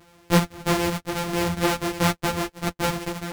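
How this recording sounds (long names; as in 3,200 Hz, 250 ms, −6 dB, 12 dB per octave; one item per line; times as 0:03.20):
a buzz of ramps at a fixed pitch in blocks of 256 samples
tremolo saw down 1.5 Hz, depth 45%
a shimmering, thickened sound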